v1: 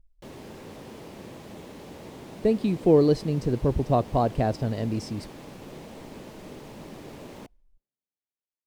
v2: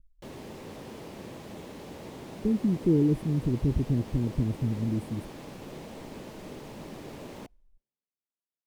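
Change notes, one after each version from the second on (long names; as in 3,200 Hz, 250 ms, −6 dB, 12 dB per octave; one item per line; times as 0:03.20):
speech: add inverse Chebyshev band-stop filter 640–5,900 Hz, stop band 40 dB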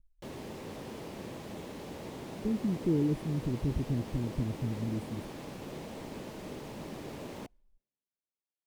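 speech −5.5 dB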